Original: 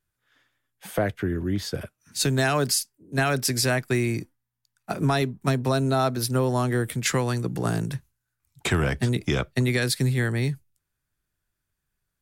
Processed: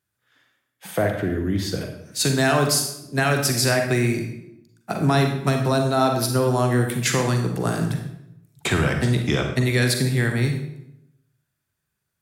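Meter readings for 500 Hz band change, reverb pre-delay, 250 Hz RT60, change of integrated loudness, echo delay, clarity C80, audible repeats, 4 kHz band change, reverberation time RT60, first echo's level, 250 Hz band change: +4.0 dB, 36 ms, 1.0 s, +3.5 dB, no echo audible, 8.5 dB, no echo audible, +3.5 dB, 0.80 s, no echo audible, +3.5 dB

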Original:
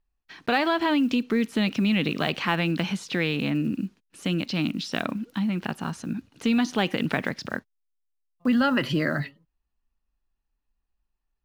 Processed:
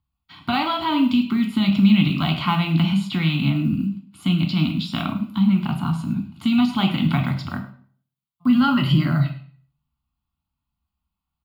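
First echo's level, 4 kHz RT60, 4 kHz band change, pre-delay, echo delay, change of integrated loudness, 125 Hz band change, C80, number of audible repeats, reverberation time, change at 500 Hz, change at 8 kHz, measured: −16.5 dB, 0.40 s, +4.0 dB, 3 ms, 103 ms, +5.5 dB, +10.5 dB, 13.0 dB, 1, 0.50 s, −6.5 dB, can't be measured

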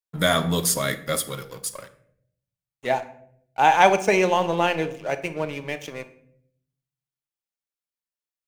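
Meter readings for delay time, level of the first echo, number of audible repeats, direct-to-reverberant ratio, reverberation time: no echo audible, no echo audible, no echo audible, 9.0 dB, 0.65 s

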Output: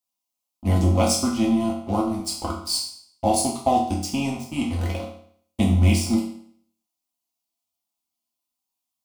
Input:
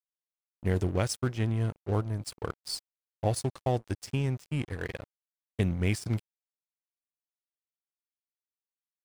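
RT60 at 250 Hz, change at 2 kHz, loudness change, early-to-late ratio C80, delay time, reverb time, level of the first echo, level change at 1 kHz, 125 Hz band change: 0.60 s, +4.0 dB, +9.0 dB, 9.0 dB, no echo audible, 0.60 s, no echo audible, +14.0 dB, +5.5 dB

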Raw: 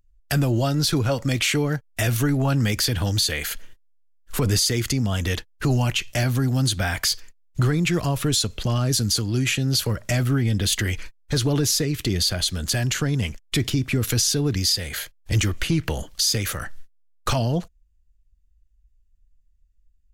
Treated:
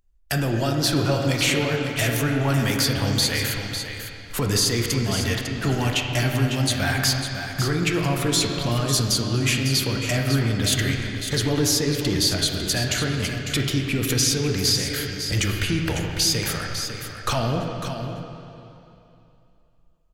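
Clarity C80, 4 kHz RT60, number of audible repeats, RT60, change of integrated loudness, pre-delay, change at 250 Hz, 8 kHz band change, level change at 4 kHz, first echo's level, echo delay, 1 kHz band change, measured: 2.0 dB, 2.6 s, 1, 2.8 s, 0.0 dB, 13 ms, +0.5 dB, +0.5 dB, +1.5 dB, −9.0 dB, 551 ms, +2.5 dB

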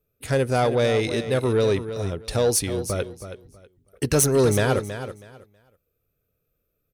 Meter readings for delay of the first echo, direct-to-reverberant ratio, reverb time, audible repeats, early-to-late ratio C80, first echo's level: 322 ms, no reverb audible, no reverb audible, 2, no reverb audible, −11.0 dB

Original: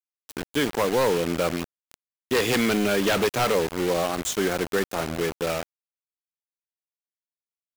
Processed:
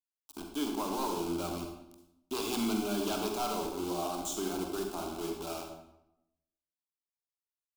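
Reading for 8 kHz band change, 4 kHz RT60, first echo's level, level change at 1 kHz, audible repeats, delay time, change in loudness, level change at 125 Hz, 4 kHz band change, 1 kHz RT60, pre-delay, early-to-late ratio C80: −7.5 dB, 0.60 s, no echo audible, −7.5 dB, no echo audible, no echo audible, −10.5 dB, −13.0 dB, −10.0 dB, 0.80 s, 39 ms, 7.0 dB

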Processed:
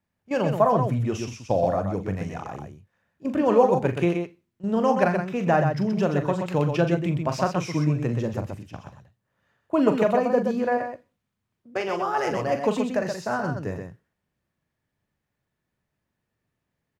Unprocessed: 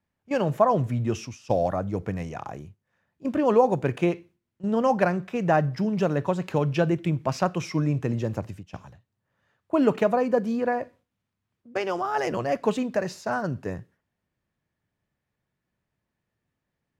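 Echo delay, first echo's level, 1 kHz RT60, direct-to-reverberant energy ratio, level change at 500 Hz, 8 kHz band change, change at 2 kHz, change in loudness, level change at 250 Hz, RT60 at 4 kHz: 41 ms, −9.0 dB, no reverb audible, no reverb audible, +1.5 dB, +1.5 dB, +1.5 dB, +1.5 dB, +1.5 dB, no reverb audible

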